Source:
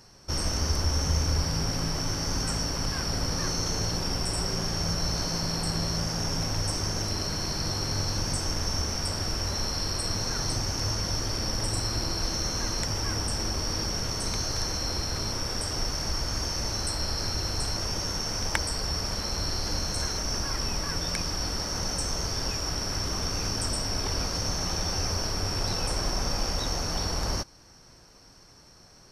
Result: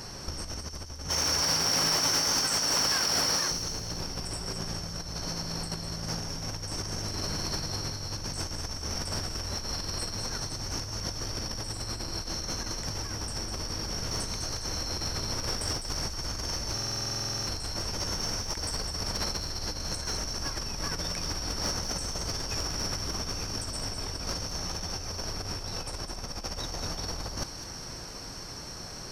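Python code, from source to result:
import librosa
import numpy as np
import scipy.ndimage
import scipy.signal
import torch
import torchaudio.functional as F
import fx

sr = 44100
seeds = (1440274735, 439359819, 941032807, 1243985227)

y = fx.highpass(x, sr, hz=810.0, slope=6, at=(1.09, 3.51))
y = fx.over_compress(y, sr, threshold_db=-35.0, ratio=-0.5)
y = 10.0 ** (-25.5 / 20.0) * np.tanh(y / 10.0 ** (-25.5 / 20.0))
y = fx.echo_wet_highpass(y, sr, ms=204, feedback_pct=49, hz=3200.0, wet_db=-8)
y = fx.buffer_glitch(y, sr, at_s=(16.73,), block=2048, repeats=15)
y = y * 10.0 ** (5.0 / 20.0)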